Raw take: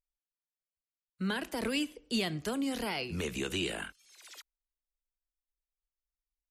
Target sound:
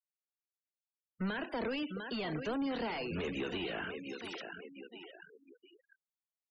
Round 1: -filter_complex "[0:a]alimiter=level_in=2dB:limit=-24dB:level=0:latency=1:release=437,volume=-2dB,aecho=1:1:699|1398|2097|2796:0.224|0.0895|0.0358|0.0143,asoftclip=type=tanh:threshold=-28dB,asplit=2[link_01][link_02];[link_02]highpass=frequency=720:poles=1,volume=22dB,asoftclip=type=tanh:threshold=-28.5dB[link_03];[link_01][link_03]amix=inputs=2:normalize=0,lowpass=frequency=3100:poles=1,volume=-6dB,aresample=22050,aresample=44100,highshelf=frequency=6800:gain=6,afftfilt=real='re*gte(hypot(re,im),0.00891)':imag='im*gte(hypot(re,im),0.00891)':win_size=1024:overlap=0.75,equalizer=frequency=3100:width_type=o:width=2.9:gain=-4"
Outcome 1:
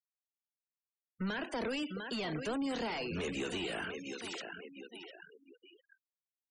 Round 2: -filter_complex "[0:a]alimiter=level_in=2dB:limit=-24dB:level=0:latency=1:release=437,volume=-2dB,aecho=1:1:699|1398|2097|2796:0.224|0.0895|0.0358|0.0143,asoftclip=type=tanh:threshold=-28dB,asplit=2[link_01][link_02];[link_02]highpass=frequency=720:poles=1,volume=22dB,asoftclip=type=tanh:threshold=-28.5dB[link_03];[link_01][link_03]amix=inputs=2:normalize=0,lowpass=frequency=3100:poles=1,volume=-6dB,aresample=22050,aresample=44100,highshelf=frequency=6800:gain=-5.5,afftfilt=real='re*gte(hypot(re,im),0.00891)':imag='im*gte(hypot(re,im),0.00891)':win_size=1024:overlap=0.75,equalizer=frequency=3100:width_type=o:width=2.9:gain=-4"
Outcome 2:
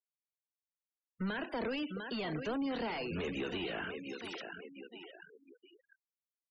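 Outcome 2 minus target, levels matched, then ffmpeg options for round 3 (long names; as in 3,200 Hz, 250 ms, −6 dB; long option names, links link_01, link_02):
soft clipping: distortion +13 dB
-filter_complex "[0:a]alimiter=level_in=2dB:limit=-24dB:level=0:latency=1:release=437,volume=-2dB,aecho=1:1:699|1398|2097|2796:0.224|0.0895|0.0358|0.0143,asoftclip=type=tanh:threshold=-20.5dB,asplit=2[link_01][link_02];[link_02]highpass=frequency=720:poles=1,volume=22dB,asoftclip=type=tanh:threshold=-28.5dB[link_03];[link_01][link_03]amix=inputs=2:normalize=0,lowpass=frequency=3100:poles=1,volume=-6dB,aresample=22050,aresample=44100,highshelf=frequency=6800:gain=-5.5,afftfilt=real='re*gte(hypot(re,im),0.00891)':imag='im*gte(hypot(re,im),0.00891)':win_size=1024:overlap=0.75,equalizer=frequency=3100:width_type=o:width=2.9:gain=-4"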